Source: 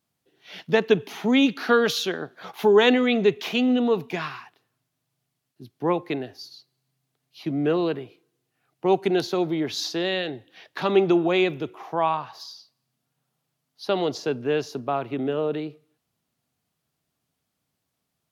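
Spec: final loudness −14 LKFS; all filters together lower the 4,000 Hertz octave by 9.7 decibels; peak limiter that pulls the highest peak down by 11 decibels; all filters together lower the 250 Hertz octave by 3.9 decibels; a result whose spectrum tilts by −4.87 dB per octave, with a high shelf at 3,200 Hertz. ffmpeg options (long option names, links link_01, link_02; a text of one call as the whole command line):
ffmpeg -i in.wav -af "equalizer=frequency=250:width_type=o:gain=-5,highshelf=frequency=3200:gain=-6.5,equalizer=frequency=4000:width_type=o:gain=-8,volume=16.5dB,alimiter=limit=-3.5dB:level=0:latency=1" out.wav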